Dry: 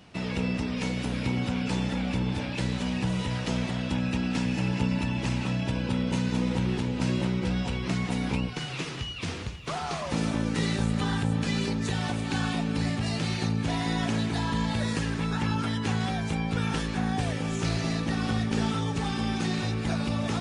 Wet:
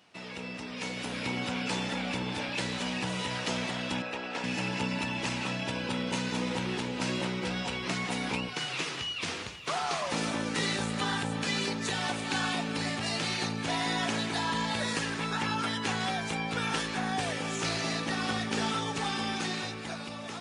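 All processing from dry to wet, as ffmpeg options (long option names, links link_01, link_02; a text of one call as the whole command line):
ffmpeg -i in.wav -filter_complex "[0:a]asettb=1/sr,asplit=3[link_01][link_02][link_03];[link_01]atrim=end=4.024[link_04];[link_02]atrim=start=4.02:end=4.44,asetpts=PTS-STARTPTS,afade=type=in:duration=0.004:curve=qsin,afade=type=out:start_time=0.416:duration=0.004:curve=qsin,lowpass=frequency=2200:poles=1,lowshelf=frequency=310:width_type=q:width=1.5:gain=-10[link_05];[link_03]atrim=start=4.436[link_06];[link_04][link_05]acrossfade=duration=0.004:curve1=hsin:curve2=qsin[link_07];[link_07][link_06]acrossfade=duration=0.004:curve1=qsin:curve2=hsin,highpass=frequency=590:poles=1,dynaudnorm=framelen=110:gausssize=17:maxgain=8dB,volume=-5dB" out.wav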